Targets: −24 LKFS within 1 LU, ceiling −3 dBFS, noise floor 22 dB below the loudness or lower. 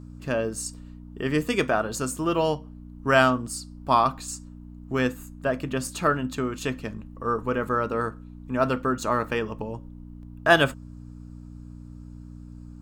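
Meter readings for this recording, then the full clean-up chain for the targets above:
mains hum 60 Hz; hum harmonics up to 300 Hz; level of the hum −40 dBFS; integrated loudness −26.0 LKFS; sample peak −3.0 dBFS; target loudness −24.0 LKFS
→ hum removal 60 Hz, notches 5
level +2 dB
brickwall limiter −3 dBFS

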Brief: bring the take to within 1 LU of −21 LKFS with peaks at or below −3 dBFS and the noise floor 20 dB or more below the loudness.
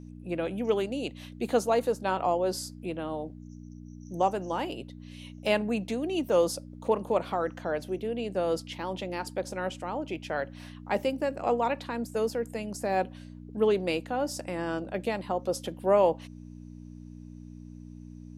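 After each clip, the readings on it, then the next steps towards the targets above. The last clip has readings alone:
mains hum 60 Hz; hum harmonics up to 300 Hz; level of the hum −42 dBFS; integrated loudness −30.0 LKFS; sample peak −11.0 dBFS; target loudness −21.0 LKFS
→ hum removal 60 Hz, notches 5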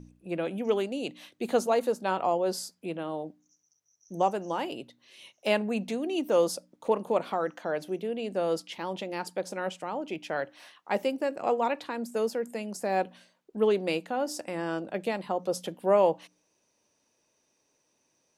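mains hum none found; integrated loudness −30.5 LKFS; sample peak −11.5 dBFS; target loudness −21.0 LKFS
→ level +9.5 dB
brickwall limiter −3 dBFS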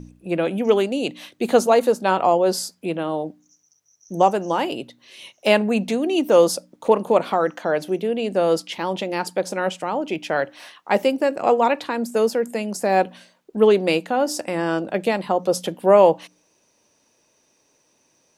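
integrated loudness −21.0 LKFS; sample peak −3.0 dBFS; background noise floor −64 dBFS

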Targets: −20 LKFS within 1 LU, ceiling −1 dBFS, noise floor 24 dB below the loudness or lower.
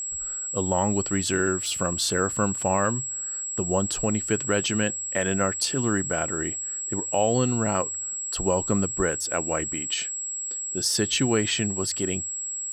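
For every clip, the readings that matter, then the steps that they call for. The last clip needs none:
interfering tone 7,700 Hz; level of the tone −29 dBFS; integrated loudness −25.0 LKFS; sample peak −10.5 dBFS; target loudness −20.0 LKFS
→ notch filter 7,700 Hz, Q 30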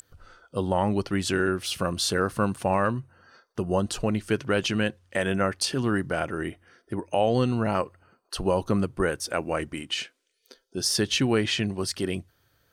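interfering tone none found; integrated loudness −27.0 LKFS; sample peak −11.5 dBFS; target loudness −20.0 LKFS
→ level +7 dB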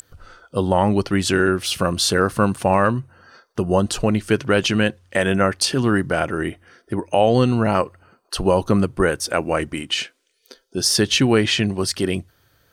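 integrated loudness −20.0 LKFS; sample peak −4.5 dBFS; background noise floor −66 dBFS

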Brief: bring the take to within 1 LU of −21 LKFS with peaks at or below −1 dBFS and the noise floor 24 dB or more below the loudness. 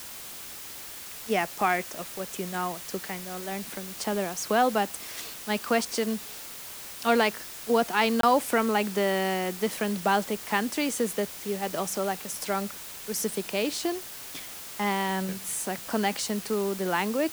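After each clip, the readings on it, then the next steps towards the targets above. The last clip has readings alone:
number of dropouts 1; longest dropout 23 ms; background noise floor −41 dBFS; target noise floor −53 dBFS; integrated loudness −28.5 LKFS; sample peak −9.0 dBFS; target loudness −21.0 LKFS
→ repair the gap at 0:08.21, 23 ms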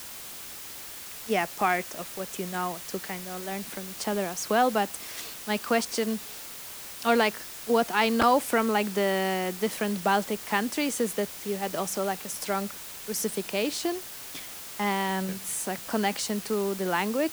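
number of dropouts 0; background noise floor −41 dBFS; target noise floor −53 dBFS
→ broadband denoise 12 dB, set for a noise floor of −41 dBFS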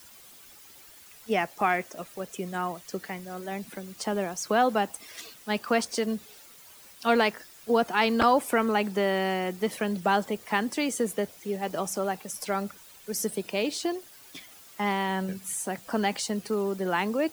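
background noise floor −51 dBFS; target noise floor −53 dBFS
→ broadband denoise 6 dB, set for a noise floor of −51 dBFS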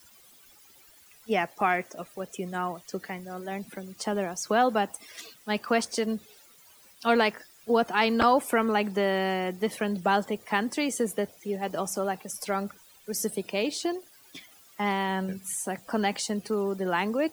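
background noise floor −56 dBFS; integrated loudness −28.5 LKFS; sample peak −9.5 dBFS; target loudness −21.0 LKFS
→ level +7.5 dB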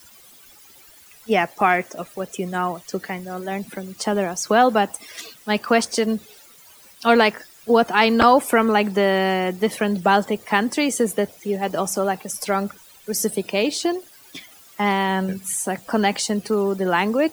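integrated loudness −21.0 LKFS; sample peak −2.0 dBFS; background noise floor −49 dBFS

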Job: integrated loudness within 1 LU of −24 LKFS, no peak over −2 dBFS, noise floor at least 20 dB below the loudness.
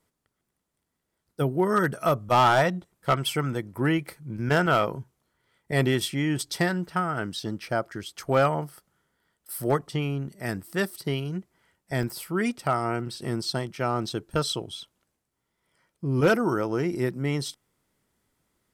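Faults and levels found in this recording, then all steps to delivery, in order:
share of clipped samples 0.3%; peaks flattened at −14.0 dBFS; number of dropouts 1; longest dropout 3.4 ms; integrated loudness −26.5 LKFS; sample peak −14.0 dBFS; target loudness −24.0 LKFS
→ clipped peaks rebuilt −14 dBFS
repair the gap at 0:12.03, 3.4 ms
level +2.5 dB

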